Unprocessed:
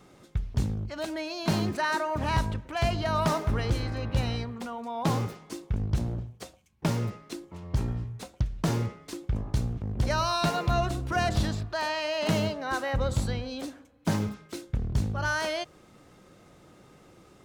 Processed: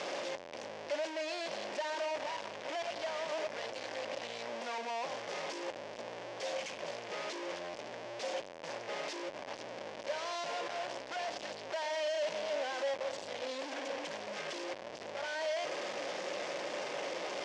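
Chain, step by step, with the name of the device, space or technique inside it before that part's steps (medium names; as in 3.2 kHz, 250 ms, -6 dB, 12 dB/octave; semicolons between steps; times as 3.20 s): home computer beeper (one-bit comparator; cabinet simulation 530–5600 Hz, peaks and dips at 570 Hz +9 dB, 1.3 kHz -8 dB, 4 kHz -5 dB); trim -6.5 dB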